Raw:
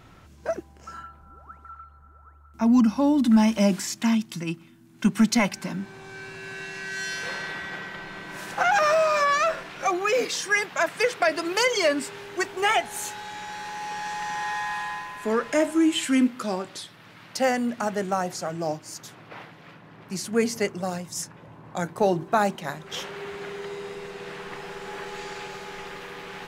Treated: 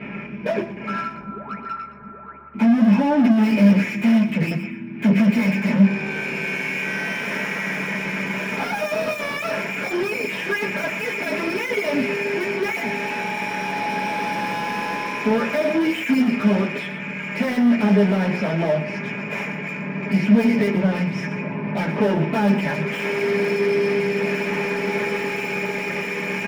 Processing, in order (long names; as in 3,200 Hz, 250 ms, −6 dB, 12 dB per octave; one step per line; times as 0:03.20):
comb filter 5 ms, depth 62%
in parallel at −11 dB: bit-depth reduction 6 bits, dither none
on the sum: low-pass with resonance 2,400 Hz, resonance Q 15
soft clipping −35.5 dBFS, distortion 2 dB
feedback echo with a high-pass in the loop 119 ms, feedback 18%, level −11.5 dB
convolution reverb RT60 0.15 s, pre-delay 3 ms, DRR −8 dB
level −4 dB